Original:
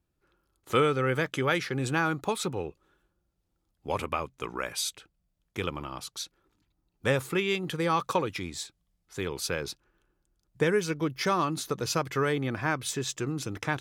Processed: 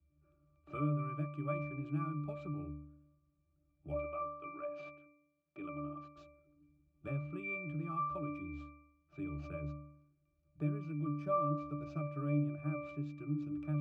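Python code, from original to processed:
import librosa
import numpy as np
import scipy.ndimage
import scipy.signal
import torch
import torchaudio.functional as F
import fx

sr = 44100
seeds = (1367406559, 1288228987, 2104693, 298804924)

y = np.repeat(x[::4], 4)[:len(x)]
y = fx.bandpass_edges(y, sr, low_hz=280.0, high_hz=5700.0, at=(3.94, 6.17))
y = fx.octave_resonator(y, sr, note='D', decay_s=0.68)
y = fx.band_squash(y, sr, depth_pct=40)
y = y * 10.0 ** (8.0 / 20.0)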